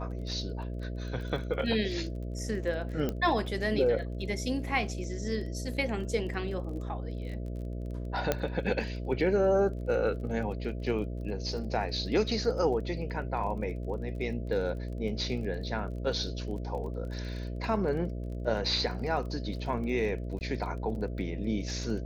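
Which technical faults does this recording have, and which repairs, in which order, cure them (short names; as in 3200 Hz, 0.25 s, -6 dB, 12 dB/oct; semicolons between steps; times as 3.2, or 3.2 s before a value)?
buzz 60 Hz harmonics 11 -36 dBFS
crackle 23/s -40 dBFS
3.09 pop -18 dBFS
8.32 pop -12 dBFS
20.39–20.41 gap 19 ms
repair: de-click; de-hum 60 Hz, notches 11; interpolate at 20.39, 19 ms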